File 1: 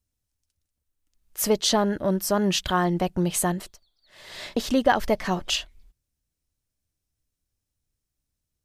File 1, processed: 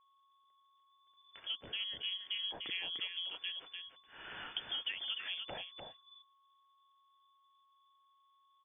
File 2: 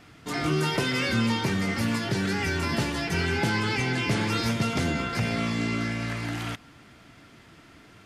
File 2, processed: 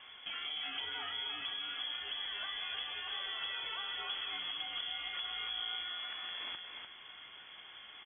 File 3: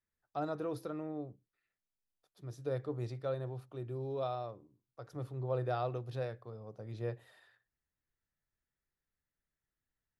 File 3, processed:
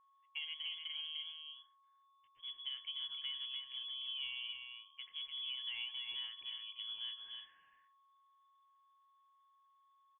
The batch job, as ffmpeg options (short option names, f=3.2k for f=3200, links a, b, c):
-filter_complex "[0:a]acrusher=bits=8:mode=log:mix=0:aa=0.000001,acompressor=threshold=-40dB:ratio=4,lowpass=f=3k:t=q:w=0.5098,lowpass=f=3k:t=q:w=0.6013,lowpass=f=3k:t=q:w=0.9,lowpass=f=3k:t=q:w=2.563,afreqshift=-3500,asplit=2[a][b];[b]aecho=0:1:298:0.531[c];[a][c]amix=inputs=2:normalize=0,aeval=exprs='val(0)+0.000447*sin(2*PI*1100*n/s)':c=same,volume=-1.5dB"